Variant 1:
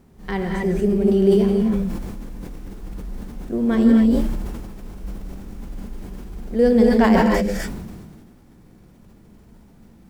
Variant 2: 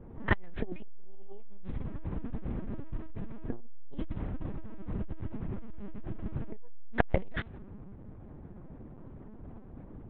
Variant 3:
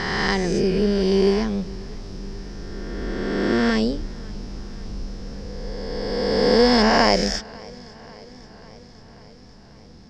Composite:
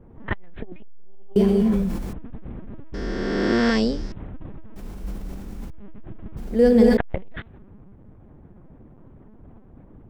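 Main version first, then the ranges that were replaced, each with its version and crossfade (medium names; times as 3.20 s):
2
1.36–2.13 s: from 1
2.94–4.12 s: from 3
4.76–5.70 s: from 1
6.37–6.97 s: from 1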